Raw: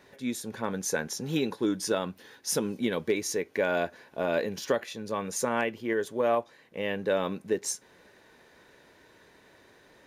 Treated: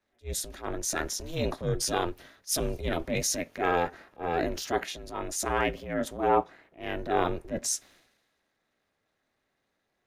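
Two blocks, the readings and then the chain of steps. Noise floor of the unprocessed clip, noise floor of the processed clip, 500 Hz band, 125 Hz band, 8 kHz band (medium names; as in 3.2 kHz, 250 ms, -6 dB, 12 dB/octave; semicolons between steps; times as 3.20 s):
-59 dBFS, -79 dBFS, -2.0 dB, +3.5 dB, +3.0 dB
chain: ring modulator 170 Hz; transient shaper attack -7 dB, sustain +5 dB; three bands expanded up and down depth 70%; trim +3 dB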